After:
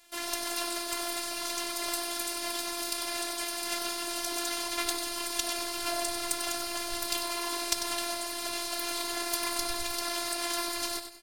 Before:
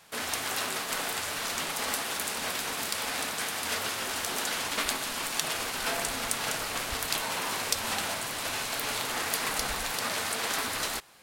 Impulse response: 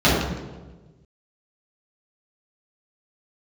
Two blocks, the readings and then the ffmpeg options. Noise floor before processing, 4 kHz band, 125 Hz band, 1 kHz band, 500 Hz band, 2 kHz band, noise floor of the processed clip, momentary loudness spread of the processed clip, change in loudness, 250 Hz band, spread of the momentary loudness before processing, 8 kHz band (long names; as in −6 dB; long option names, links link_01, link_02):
−35 dBFS, −0.5 dB, −12.5 dB, −2.5 dB, 0.0 dB, −5.5 dB, −36 dBFS, 2 LU, −1.5 dB, +2.5 dB, 2 LU, −1.0 dB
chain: -filter_complex "[0:a]aeval=exprs='0.708*(cos(1*acos(clip(val(0)/0.708,-1,1)))-cos(1*PI/2))+0.224*(cos(2*acos(clip(val(0)/0.708,-1,1)))-cos(2*PI/2))':channel_layout=same,acrossover=split=400|1400[link_01][link_02][link_03];[link_02]adynamicsmooth=sensitivity=5.5:basefreq=1000[link_04];[link_01][link_04][link_03]amix=inputs=3:normalize=0,afftfilt=real='hypot(re,im)*cos(PI*b)':imag='0':win_size=512:overlap=0.75,aecho=1:1:96|192|288|384:0.376|0.132|0.046|0.0161,volume=2dB"